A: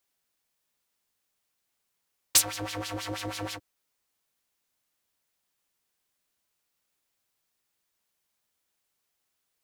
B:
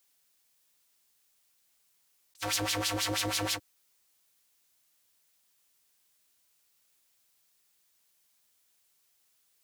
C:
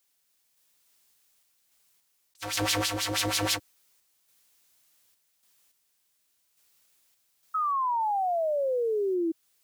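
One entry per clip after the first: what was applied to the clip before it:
high-shelf EQ 2,500 Hz +8.5 dB; compressor whose output falls as the input rises −28 dBFS, ratio −0.5; level −3.5 dB
sample-and-hold tremolo; sound drawn into the spectrogram fall, 0:07.54–0:09.32, 320–1,300 Hz −32 dBFS; level +5 dB

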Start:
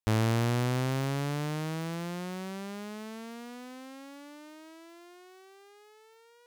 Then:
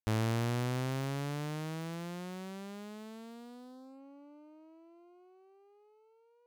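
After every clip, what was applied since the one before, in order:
adaptive Wiener filter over 25 samples
level −5 dB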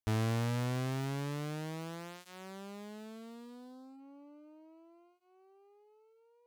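notch comb filter 180 Hz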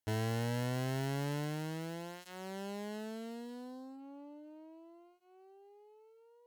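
hard clipping −38.5 dBFS, distortion −8 dB
notch comb filter 1,200 Hz
harmonic generator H 3 −19 dB, 8 −30 dB, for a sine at −35 dBFS
level +7.5 dB

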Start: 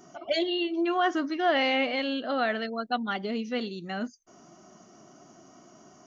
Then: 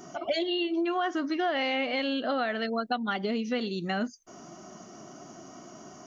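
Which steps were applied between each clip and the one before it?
downward compressor 5 to 1, threshold −33 dBFS, peak gain reduction 12.5 dB
level +6.5 dB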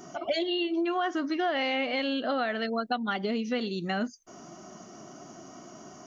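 no processing that can be heard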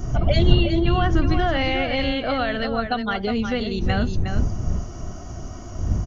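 wind on the microphone 88 Hz −28 dBFS
on a send: single-tap delay 362 ms −7.5 dB
on the sum: level +5 dB

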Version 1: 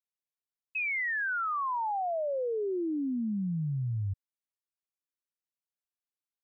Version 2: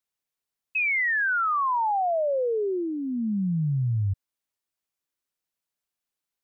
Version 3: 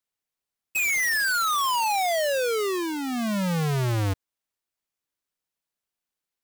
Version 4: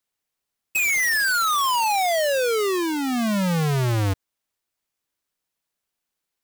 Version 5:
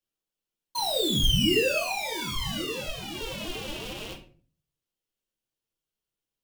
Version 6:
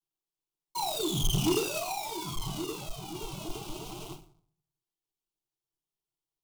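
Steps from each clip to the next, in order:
dynamic equaliser 290 Hz, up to −6 dB, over −46 dBFS, Q 2.4; level +7 dB
each half-wave held at its own peak; level −2.5 dB
downward compressor, threshold −26 dBFS, peak gain reduction 2 dB; level +5 dB
high-pass with resonance 1,200 Hz, resonance Q 2.2; ring modulation 1,600 Hz; rectangular room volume 34 cubic metres, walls mixed, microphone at 0.64 metres; level −8.5 dB
each half-wave held at its own peak; phaser with its sweep stopped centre 350 Hz, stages 8; highs frequency-modulated by the lows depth 0.14 ms; level −6.5 dB

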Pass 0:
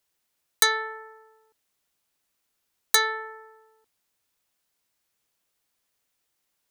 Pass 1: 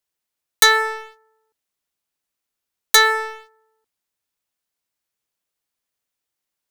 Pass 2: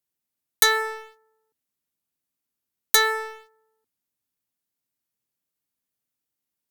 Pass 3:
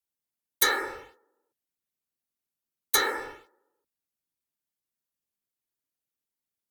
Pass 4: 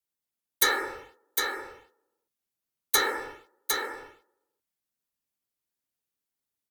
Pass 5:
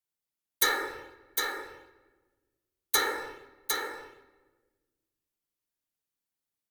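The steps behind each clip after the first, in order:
leveller curve on the samples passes 3
graphic EQ with 10 bands 125 Hz +8 dB, 250 Hz +9 dB, 16,000 Hz +8 dB; level −7 dB
random phases in short frames; level −5.5 dB
single-tap delay 756 ms −5 dB
rectangular room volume 1,100 cubic metres, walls mixed, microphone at 0.49 metres; level −2.5 dB

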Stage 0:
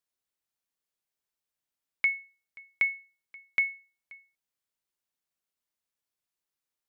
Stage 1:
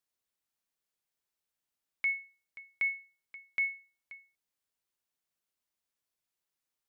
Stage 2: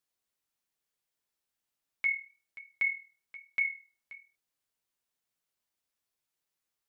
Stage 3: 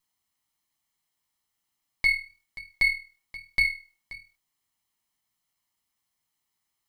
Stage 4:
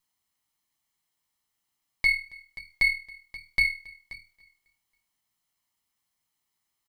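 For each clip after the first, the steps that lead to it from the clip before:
brickwall limiter −24.5 dBFS, peak gain reduction 8.5 dB
flanger 1.1 Hz, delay 6 ms, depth 8.2 ms, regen −36%; level +5 dB
lower of the sound and its delayed copy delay 0.97 ms; level +7.5 dB
repeating echo 274 ms, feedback 52%, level −24 dB

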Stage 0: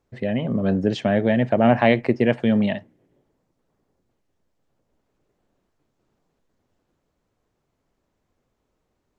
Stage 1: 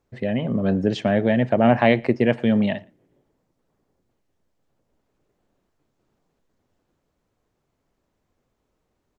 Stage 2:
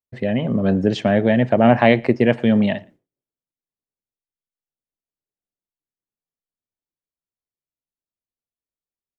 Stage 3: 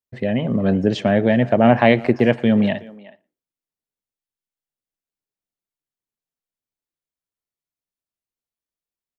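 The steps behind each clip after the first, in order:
slap from a distant wall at 20 metres, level −27 dB
downward expander −44 dBFS; level +3 dB
far-end echo of a speakerphone 370 ms, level −19 dB

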